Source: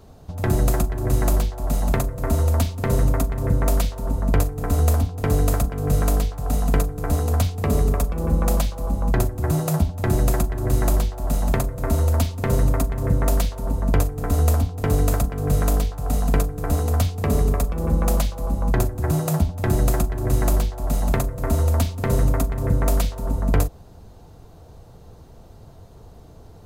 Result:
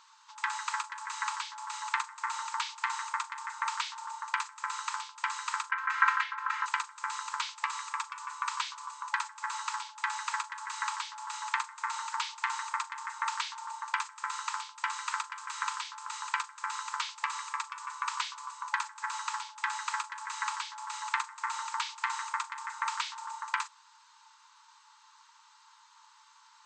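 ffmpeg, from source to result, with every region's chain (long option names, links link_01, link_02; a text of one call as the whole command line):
ffmpeg -i in.wav -filter_complex "[0:a]asettb=1/sr,asplit=3[link_01][link_02][link_03];[link_01]atrim=end=5.714[link_04];[link_02]atrim=start=5.71:end=6.66,asetpts=PTS-STARTPTS,afade=type=in:duration=0.004:curve=qsin,afade=type=out:start_time=0.946:duration=0.004:curve=qsin,lowpass=frequency=1800:width_type=q:width=2.7,tiltshelf=frequency=1100:gain=-4.5,aecho=1:1:3.8:0.95,atrim=end_sample=41895[link_05];[link_03]atrim=start=6.656[link_06];[link_04][link_05]acrossfade=duration=0.004:curve1=hsin:curve2=qsin[link_07];[link_07][link_06]acrossfade=duration=0.004:curve1=qsin:curve2=hsin,afftfilt=real='re*between(b*sr/4096,860,8300)':imag='im*between(b*sr/4096,860,8300)':win_size=4096:overlap=0.75,acrossover=split=4500[link_08][link_09];[link_09]acompressor=threshold=-46dB:ratio=4:attack=1:release=60[link_10];[link_08][link_10]amix=inputs=2:normalize=0,volume=1.5dB" out.wav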